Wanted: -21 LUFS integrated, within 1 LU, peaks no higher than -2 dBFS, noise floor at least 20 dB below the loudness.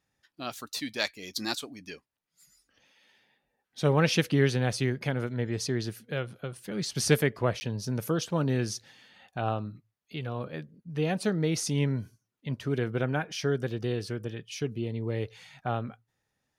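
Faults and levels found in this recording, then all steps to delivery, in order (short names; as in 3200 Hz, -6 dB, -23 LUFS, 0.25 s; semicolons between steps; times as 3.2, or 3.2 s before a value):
dropouts 1; longest dropout 10 ms; loudness -30.5 LUFS; peak -10.0 dBFS; loudness target -21.0 LUFS
-> interpolate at 7.6, 10 ms; gain +9.5 dB; limiter -2 dBFS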